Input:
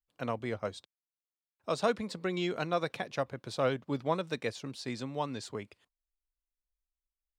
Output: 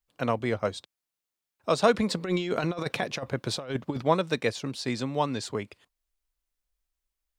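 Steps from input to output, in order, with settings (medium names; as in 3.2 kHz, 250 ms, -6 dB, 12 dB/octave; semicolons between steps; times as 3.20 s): 1.94–4.02 s: compressor with a negative ratio -35 dBFS, ratio -0.5; trim +7.5 dB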